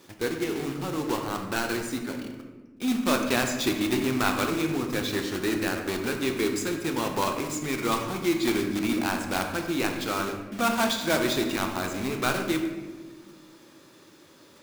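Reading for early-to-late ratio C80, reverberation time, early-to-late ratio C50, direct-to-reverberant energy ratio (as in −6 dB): 7.5 dB, 1.4 s, 6.0 dB, 3.5 dB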